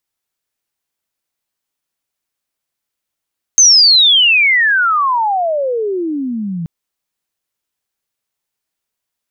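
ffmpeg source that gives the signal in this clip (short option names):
-f lavfi -i "aevalsrc='pow(10,(-3.5-15*t/3.08)/20)*sin(2*PI*6400*3.08/log(160/6400)*(exp(log(160/6400)*t/3.08)-1))':d=3.08:s=44100"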